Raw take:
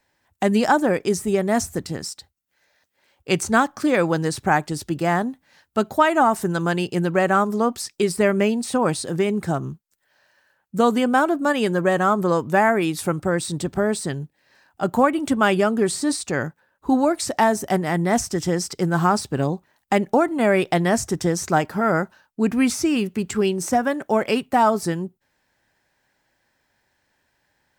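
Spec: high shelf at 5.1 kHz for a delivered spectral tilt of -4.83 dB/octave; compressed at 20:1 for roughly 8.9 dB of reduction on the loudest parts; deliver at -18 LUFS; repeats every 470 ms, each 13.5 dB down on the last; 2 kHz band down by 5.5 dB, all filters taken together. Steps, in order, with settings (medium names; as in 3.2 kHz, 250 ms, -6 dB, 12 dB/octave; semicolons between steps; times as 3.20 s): peaking EQ 2 kHz -8 dB; treble shelf 5.1 kHz +3 dB; compression 20:1, threshold -22 dBFS; feedback delay 470 ms, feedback 21%, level -13.5 dB; trim +9.5 dB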